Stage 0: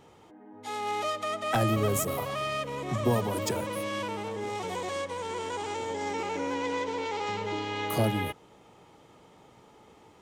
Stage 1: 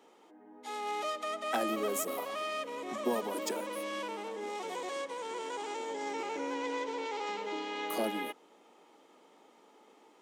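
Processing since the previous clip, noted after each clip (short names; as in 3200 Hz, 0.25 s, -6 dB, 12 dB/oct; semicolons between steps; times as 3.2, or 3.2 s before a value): steep high-pass 230 Hz 36 dB/oct; gain -4.5 dB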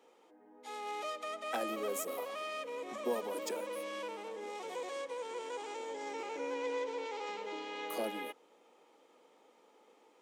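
low shelf 260 Hz -5 dB; small resonant body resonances 500/2400 Hz, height 8 dB; gain -4.5 dB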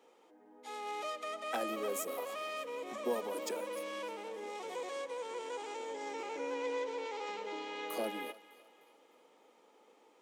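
thinning echo 0.303 s, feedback 45%, high-pass 670 Hz, level -17 dB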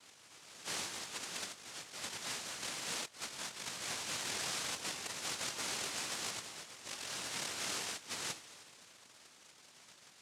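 noise vocoder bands 1; negative-ratio compressor -43 dBFS, ratio -0.5; gain +1 dB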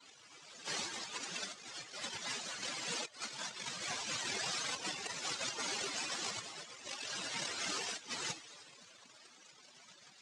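spectral contrast raised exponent 2.4; gain +1 dB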